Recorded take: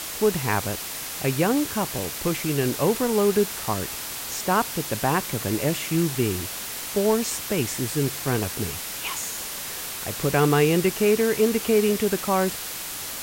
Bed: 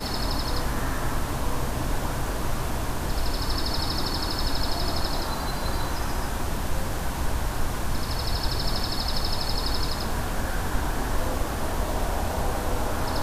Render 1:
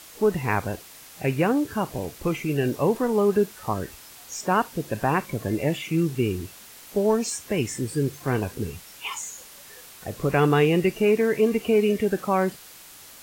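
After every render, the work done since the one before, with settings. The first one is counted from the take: noise print and reduce 13 dB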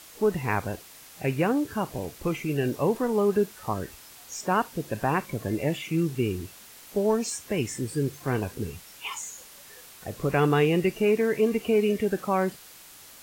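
trim -2.5 dB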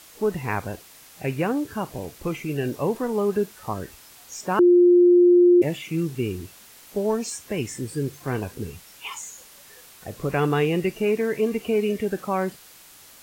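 4.59–5.62 s: bleep 353 Hz -11 dBFS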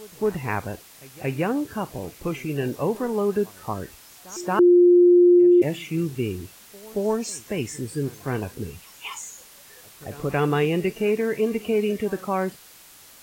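reverse echo 227 ms -21 dB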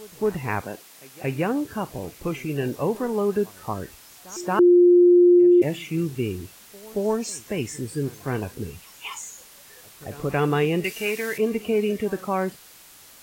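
0.61–1.24 s: high-pass 190 Hz; 10.84–11.38 s: tilt shelf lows -9 dB

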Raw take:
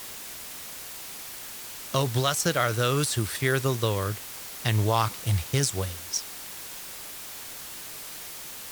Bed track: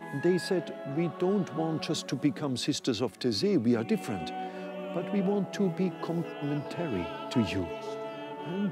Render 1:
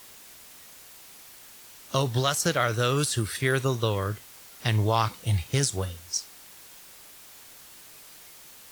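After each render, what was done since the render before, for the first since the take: noise print and reduce 9 dB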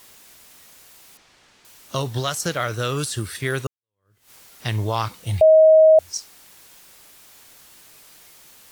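1.17–1.65 s: distance through air 110 m; 3.67–4.31 s: fade in exponential; 5.41–5.99 s: bleep 632 Hz -8 dBFS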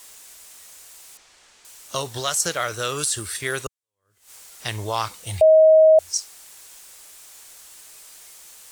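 graphic EQ 125/250/8000 Hz -9/-6/+8 dB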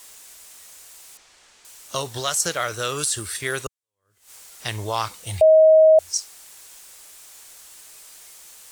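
no audible change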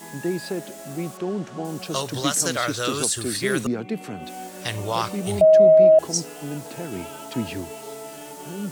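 add bed track 0 dB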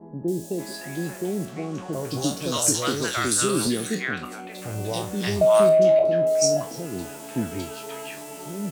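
spectral sustain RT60 0.31 s; three bands offset in time lows, highs, mids 280/580 ms, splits 730/3300 Hz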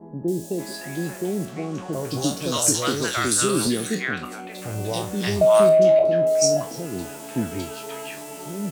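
trim +1.5 dB

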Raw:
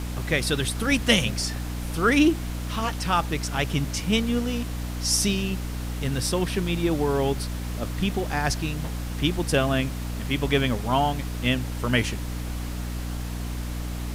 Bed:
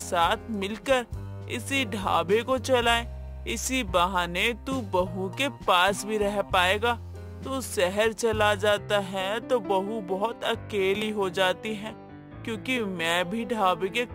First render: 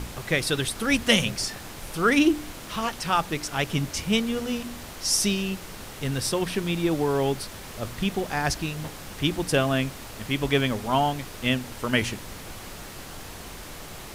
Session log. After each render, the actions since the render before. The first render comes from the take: de-hum 60 Hz, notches 5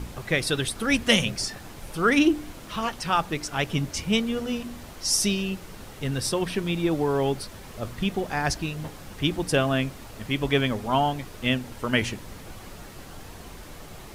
noise reduction 6 dB, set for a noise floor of -40 dBFS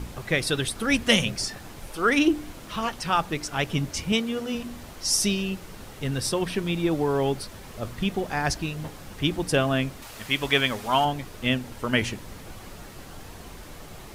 1.87–2.28 s: peaking EQ 140 Hz -15 dB; 4.12–4.55 s: high-pass 160 Hz 6 dB/octave; 10.02–11.05 s: tilt shelf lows -6 dB, about 660 Hz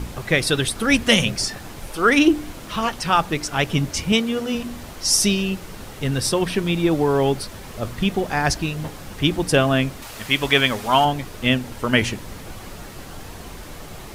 trim +5.5 dB; peak limiter -3 dBFS, peak gain reduction 2.5 dB

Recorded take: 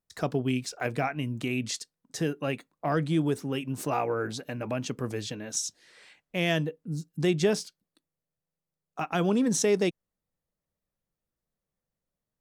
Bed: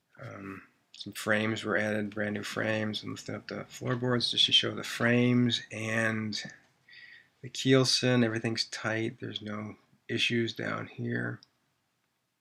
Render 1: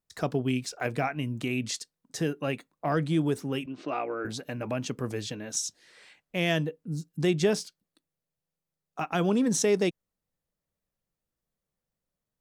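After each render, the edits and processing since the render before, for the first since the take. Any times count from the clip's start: 3.66–4.25 s: cabinet simulation 300–4000 Hz, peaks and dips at 320 Hz +4 dB, 460 Hz -5 dB, 890 Hz -9 dB, 1.7 kHz -4 dB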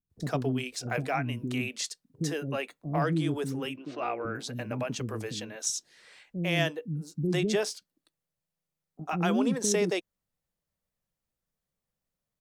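bands offset in time lows, highs 100 ms, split 350 Hz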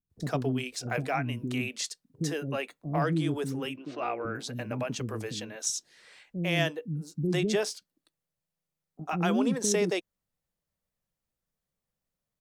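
no audible change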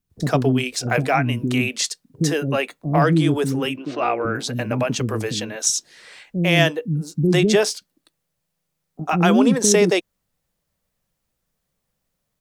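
trim +11 dB

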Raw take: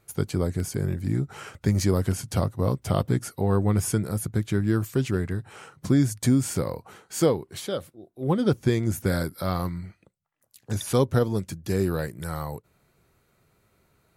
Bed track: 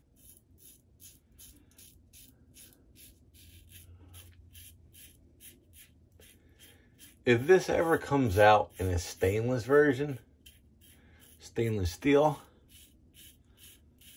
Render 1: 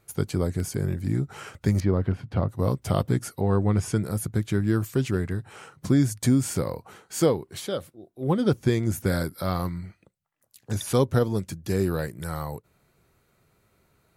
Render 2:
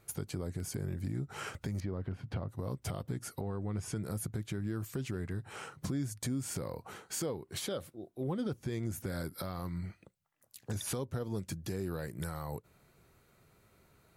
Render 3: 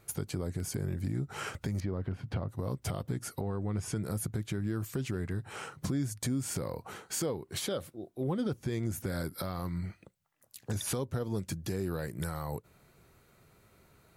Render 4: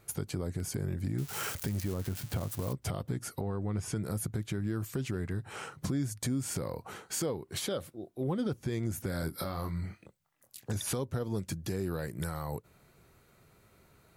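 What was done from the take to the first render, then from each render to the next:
1.80–2.49 s: distance through air 400 m; 3.40–3.96 s: distance through air 56 m
compression 5:1, threshold -32 dBFS, peak gain reduction 15 dB; peak limiter -27 dBFS, peak gain reduction 6.5 dB
trim +3 dB
1.18–2.73 s: zero-crossing glitches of -30.5 dBFS; 9.20–10.64 s: doubling 25 ms -5.5 dB

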